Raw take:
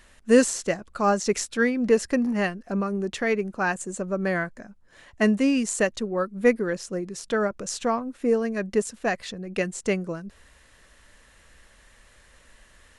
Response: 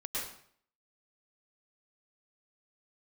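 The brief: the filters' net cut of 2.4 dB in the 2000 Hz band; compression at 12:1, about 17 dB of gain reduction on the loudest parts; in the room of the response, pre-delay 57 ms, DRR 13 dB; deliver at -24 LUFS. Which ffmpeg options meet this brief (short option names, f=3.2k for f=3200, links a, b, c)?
-filter_complex "[0:a]equalizer=f=2k:t=o:g=-3,acompressor=threshold=-30dB:ratio=12,asplit=2[a][b];[1:a]atrim=start_sample=2205,adelay=57[c];[b][c]afir=irnorm=-1:irlink=0,volume=-16.5dB[d];[a][d]amix=inputs=2:normalize=0,volume=11dB"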